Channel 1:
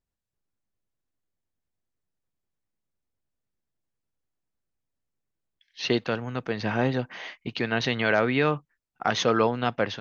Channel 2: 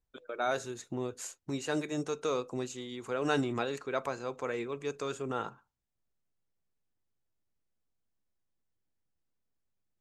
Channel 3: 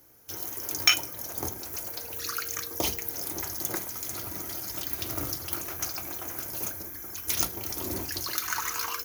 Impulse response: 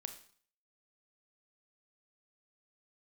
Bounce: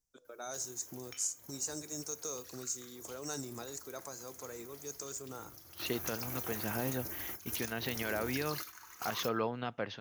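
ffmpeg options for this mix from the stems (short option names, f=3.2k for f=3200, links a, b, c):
-filter_complex "[0:a]volume=-10.5dB,asplit=3[a][b][c];[b]volume=-21dB[d];[1:a]highshelf=f=4.2k:t=q:w=3:g=12,acrossover=split=150|3000[e][f][g];[f]acompressor=threshold=-38dB:ratio=1.5[h];[e][h][g]amix=inputs=3:normalize=0,volume=-10.5dB,asplit=2[i][j];[j]volume=-10.5dB[k];[2:a]acompressor=threshold=-36dB:ratio=6,adelay=250,volume=-2.5dB,asplit=2[l][m];[m]volume=-9dB[n];[c]apad=whole_len=409908[o];[l][o]sidechaingate=range=-33dB:threshold=-53dB:ratio=16:detection=peak[p];[3:a]atrim=start_sample=2205[q];[d][k][n]amix=inputs=3:normalize=0[r];[r][q]afir=irnorm=-1:irlink=0[s];[a][i][p][s]amix=inputs=4:normalize=0,alimiter=limit=-23dB:level=0:latency=1:release=133"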